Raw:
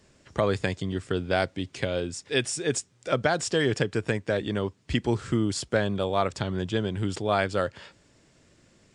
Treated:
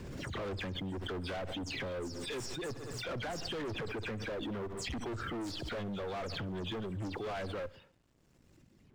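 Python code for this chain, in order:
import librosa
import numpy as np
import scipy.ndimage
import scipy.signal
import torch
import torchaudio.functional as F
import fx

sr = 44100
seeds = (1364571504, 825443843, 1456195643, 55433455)

p1 = fx.spec_delay(x, sr, highs='early', ms=115)
p2 = fx.dereverb_blind(p1, sr, rt60_s=2.0)
p3 = fx.dynamic_eq(p2, sr, hz=130.0, q=1.1, threshold_db=-45.0, ratio=4.0, max_db=-8)
p4 = fx.tube_stage(p3, sr, drive_db=27.0, bias=0.45)
p5 = fx.quant_companded(p4, sr, bits=6)
p6 = fx.low_shelf(p5, sr, hz=460.0, db=10.5)
p7 = np.clip(p6, -10.0 ** (-32.0 / 20.0), 10.0 ** (-32.0 / 20.0))
p8 = fx.lowpass(p7, sr, hz=3400.0, slope=6)
p9 = p8 + fx.echo_feedback(p8, sr, ms=66, feedback_pct=51, wet_db=-21, dry=0)
p10 = fx.pre_swell(p9, sr, db_per_s=20.0)
y = p10 * 10.0 ** (-4.5 / 20.0)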